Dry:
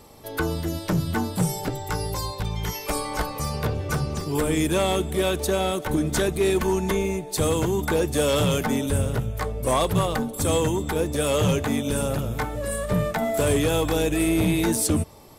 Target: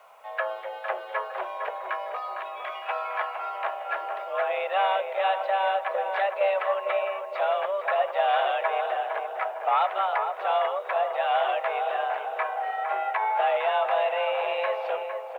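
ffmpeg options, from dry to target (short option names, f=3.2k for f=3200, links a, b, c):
-filter_complex "[0:a]highpass=f=390:t=q:w=0.5412,highpass=f=390:t=q:w=1.307,lowpass=f=2.7k:t=q:w=0.5176,lowpass=f=2.7k:t=q:w=0.7071,lowpass=f=2.7k:t=q:w=1.932,afreqshift=200,acrusher=bits=10:mix=0:aa=0.000001,asplit=2[a][b];[b]adelay=457,lowpass=f=1.5k:p=1,volume=-5dB,asplit=2[c][d];[d]adelay=457,lowpass=f=1.5k:p=1,volume=0.52,asplit=2[e][f];[f]adelay=457,lowpass=f=1.5k:p=1,volume=0.52,asplit=2[g][h];[h]adelay=457,lowpass=f=1.5k:p=1,volume=0.52,asplit=2[i][j];[j]adelay=457,lowpass=f=1.5k:p=1,volume=0.52,asplit=2[k][l];[l]adelay=457,lowpass=f=1.5k:p=1,volume=0.52,asplit=2[m][n];[n]adelay=457,lowpass=f=1.5k:p=1,volume=0.52[o];[a][c][e][g][i][k][m][o]amix=inputs=8:normalize=0"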